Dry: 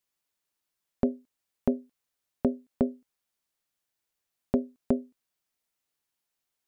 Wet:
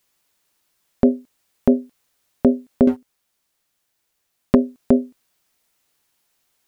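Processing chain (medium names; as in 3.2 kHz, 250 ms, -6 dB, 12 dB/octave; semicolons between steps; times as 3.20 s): 2.87–4.55 s: waveshaping leveller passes 2; loudness maximiser +16 dB; trim -1 dB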